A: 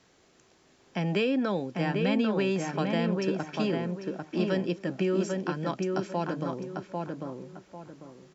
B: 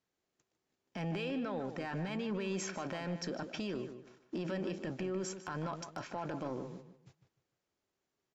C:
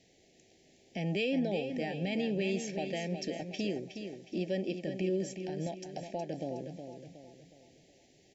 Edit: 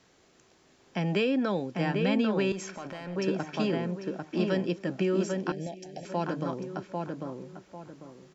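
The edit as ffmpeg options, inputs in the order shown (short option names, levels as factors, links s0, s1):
-filter_complex "[0:a]asplit=3[s0][s1][s2];[s0]atrim=end=2.522[s3];[1:a]atrim=start=2.518:end=3.162[s4];[s1]atrim=start=3.158:end=5.522[s5];[2:a]atrim=start=5.518:end=6.052[s6];[s2]atrim=start=6.048[s7];[s3][s4]acrossfade=d=0.004:c1=hsin:c2=hsin[s8];[s8][s5]acrossfade=d=0.004:c1=hsin:c2=hsin[s9];[s9][s6]acrossfade=d=0.004:c1=hsin:c2=hsin[s10];[s10][s7]acrossfade=d=0.004:c1=hsin:c2=hsin"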